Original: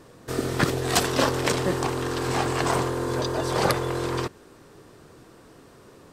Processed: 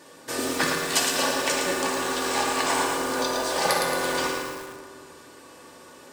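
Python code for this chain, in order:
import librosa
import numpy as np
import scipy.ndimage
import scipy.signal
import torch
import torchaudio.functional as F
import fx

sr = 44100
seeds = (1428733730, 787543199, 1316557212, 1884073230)

y = fx.peak_eq(x, sr, hz=7600.0, db=2.5, octaves=0.77)
y = y + 0.35 * np.pad(y, (int(3.4 * sr / 1000.0), 0))[:len(y)]
y = fx.rev_fdn(y, sr, rt60_s=2.1, lf_ratio=1.25, hf_ratio=0.55, size_ms=36.0, drr_db=-1.0)
y = fx.rider(y, sr, range_db=4, speed_s=0.5)
y = fx.highpass(y, sr, hz=810.0, slope=6)
y = fx.notch(y, sr, hz=1300.0, q=8.6)
y = fx.echo_crushed(y, sr, ms=112, feedback_pct=55, bits=6, wet_db=-4.5)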